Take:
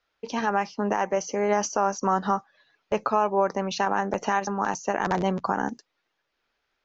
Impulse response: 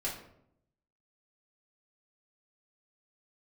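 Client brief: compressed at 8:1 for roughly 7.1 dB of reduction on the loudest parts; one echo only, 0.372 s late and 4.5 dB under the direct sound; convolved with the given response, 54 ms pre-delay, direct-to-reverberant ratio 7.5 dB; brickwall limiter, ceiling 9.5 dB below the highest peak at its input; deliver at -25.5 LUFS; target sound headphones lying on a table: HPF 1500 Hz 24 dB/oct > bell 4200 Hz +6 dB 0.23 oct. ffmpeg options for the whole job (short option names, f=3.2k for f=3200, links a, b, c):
-filter_complex "[0:a]acompressor=threshold=-25dB:ratio=8,alimiter=limit=-22.5dB:level=0:latency=1,aecho=1:1:372:0.596,asplit=2[a][b];[1:a]atrim=start_sample=2205,adelay=54[c];[b][c]afir=irnorm=-1:irlink=0,volume=-11dB[d];[a][d]amix=inputs=2:normalize=0,highpass=f=1.5k:w=0.5412,highpass=f=1.5k:w=1.3066,equalizer=f=4.2k:t=o:w=0.23:g=6,volume=14dB"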